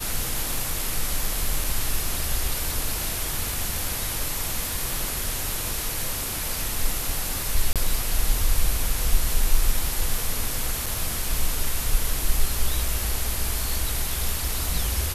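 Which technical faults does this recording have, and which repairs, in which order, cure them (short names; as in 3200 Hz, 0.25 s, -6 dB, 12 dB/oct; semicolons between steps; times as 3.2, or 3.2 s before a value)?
1.64 gap 3 ms
7.73–7.76 gap 27 ms
10.86 gap 4.5 ms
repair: interpolate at 1.64, 3 ms; interpolate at 7.73, 27 ms; interpolate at 10.86, 4.5 ms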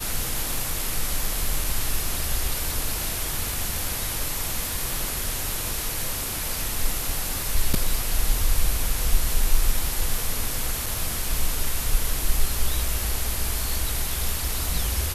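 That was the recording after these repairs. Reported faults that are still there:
none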